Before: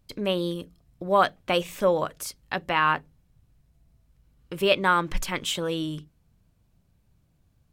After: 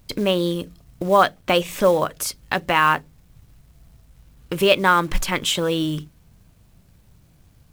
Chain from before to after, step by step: in parallel at +3 dB: compression 8:1, threshold -35 dBFS, peak gain reduction 20 dB; on the sum: companded quantiser 6-bit; trim +3.5 dB

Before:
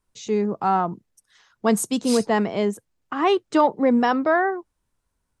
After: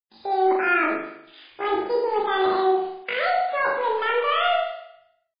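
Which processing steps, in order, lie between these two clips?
recorder AGC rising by 8.2 dB/s; low-pass 2.8 kHz 6 dB/octave; hum notches 50/100/150/200/250/300/350/400/450 Hz; reverse; compression 16:1, threshold -26 dBFS, peak gain reduction 13.5 dB; reverse; bit crusher 9-bit; pitch shift +10.5 st; in parallel at -4 dB: saturation -29.5 dBFS, distortion -12 dB; on the sum: flutter echo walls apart 6.8 m, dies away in 0.76 s; trim +2.5 dB; MP3 16 kbps 11.025 kHz

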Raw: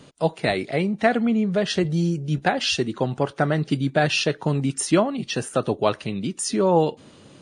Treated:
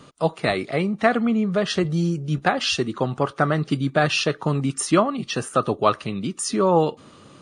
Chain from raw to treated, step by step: peaking EQ 1.2 kHz +12 dB 0.27 oct

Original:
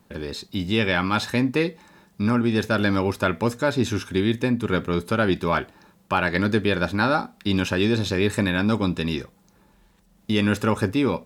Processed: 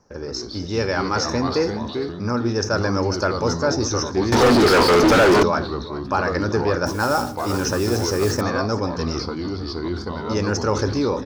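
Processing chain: FFT filter 130 Hz 0 dB, 200 Hz -9 dB, 300 Hz -2 dB, 440 Hz +3 dB, 1.4 kHz 0 dB, 3.7 kHz -18 dB, 5.7 kHz +14 dB, 8.2 kHz -21 dB; delay 401 ms -16.5 dB; on a send at -15 dB: reverberation RT60 0.65 s, pre-delay 4 ms; on the sum: ever faster or slower copies 97 ms, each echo -3 st, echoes 2, each echo -6 dB; 6.86–8.41 s: modulation noise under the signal 20 dB; dynamic bell 7.3 kHz, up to +6 dB, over -46 dBFS, Q 1.1; 4.32–5.43 s: overdrive pedal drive 40 dB, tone 2.1 kHz, clips at -6.5 dBFS; decay stretcher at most 84 dB/s

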